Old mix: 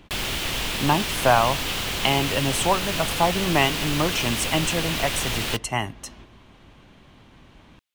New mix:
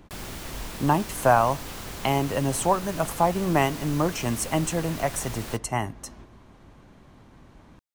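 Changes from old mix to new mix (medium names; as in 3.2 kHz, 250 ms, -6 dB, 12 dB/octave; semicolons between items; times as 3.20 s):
background -7.5 dB; master: add peaking EQ 3 kHz -10.5 dB 1.1 oct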